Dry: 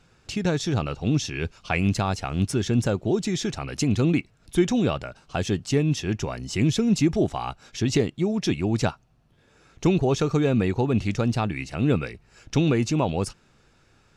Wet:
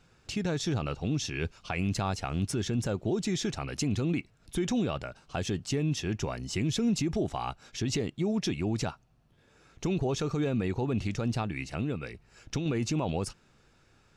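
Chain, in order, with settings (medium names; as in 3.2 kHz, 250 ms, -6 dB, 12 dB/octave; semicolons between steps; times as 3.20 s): 11.41–12.66 s: compression 10:1, threshold -24 dBFS, peak gain reduction 9.5 dB; peak limiter -17 dBFS, peak gain reduction 8.5 dB; trim -3.5 dB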